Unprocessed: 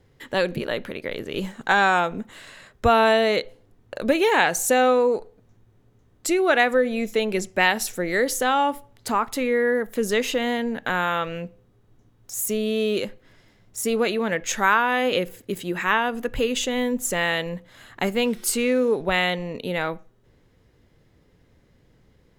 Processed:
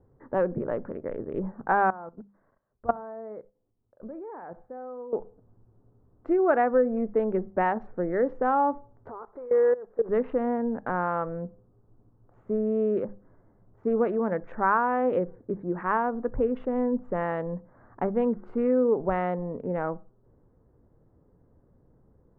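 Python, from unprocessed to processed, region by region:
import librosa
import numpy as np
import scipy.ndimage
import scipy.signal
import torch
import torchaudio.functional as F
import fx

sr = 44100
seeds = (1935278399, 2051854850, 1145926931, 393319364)

y = fx.chain(x, sr, fx.level_steps(step_db=15),
    fx.room_flutter(wall_m=11.1, rt60_s=0.21),
    fx.upward_expand(threshold_db=-45.0, expansion=1.5), at=(1.9, 5.13))
y = fx.chain(y, sr, fx.cvsd(bps=32000),
    fx.low_shelf_res(hz=320.0, db=-6.5, q=3.0),
    fx.level_steps(step_db=18), at=(9.09, 10.09))
y = fx.wiener(y, sr, points=15)
y = scipy.signal.sosfilt(scipy.signal.butter(4, 1300.0, 'lowpass', fs=sr, output='sos'), y)
y = fx.hum_notches(y, sr, base_hz=50, count=4)
y = y * 10.0 ** (-1.5 / 20.0)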